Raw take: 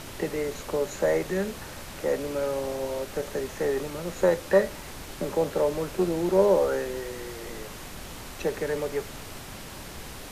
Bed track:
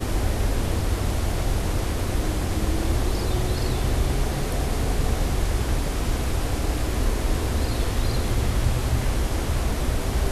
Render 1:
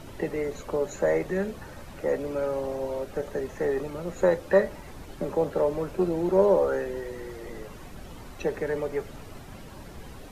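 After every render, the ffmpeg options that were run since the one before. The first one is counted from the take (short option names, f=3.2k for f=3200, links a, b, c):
-af "afftdn=nr=11:nf=-41"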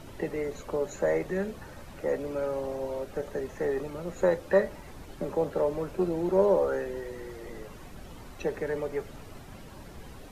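-af "volume=-2.5dB"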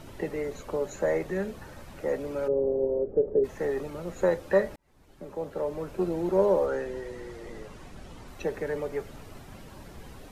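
-filter_complex "[0:a]asplit=3[a][b][c];[a]afade=t=out:st=2.47:d=0.02[d];[b]lowpass=f=430:t=q:w=3.9,afade=t=in:st=2.47:d=0.02,afade=t=out:st=3.43:d=0.02[e];[c]afade=t=in:st=3.43:d=0.02[f];[d][e][f]amix=inputs=3:normalize=0,asettb=1/sr,asplit=3[g][h][i];[g]atrim=end=6.664[j];[h]atrim=start=6.66:end=8.28,asetpts=PTS-STARTPTS,afade=t=in:d=0.004:c=qsin,afade=t=out:st=1.616:d=0.004:c=qsin,lowpass=9.6k[k];[i]atrim=start=8.276[l];[j][k]acrossfade=d=0.004:c1=hsin:c2=qsin[m];[m][l]acrossfade=d=0.004:c1=qsin:c2=hsin,asplit=2[n][o];[n]atrim=end=4.76,asetpts=PTS-STARTPTS,afade=t=out:st=4.756:d=0.004:c=hsin[p];[o]atrim=start=4.76,asetpts=PTS-STARTPTS,afade=t=in:d=1.35[q];[p][q]concat=n=2:v=0:a=1"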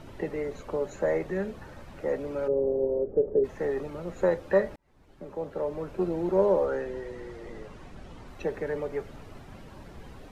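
-af "lowpass=f=3.6k:p=1"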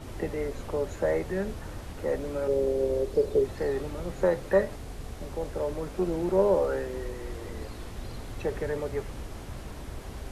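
-filter_complex "[1:a]volume=-16.5dB[a];[0:a][a]amix=inputs=2:normalize=0"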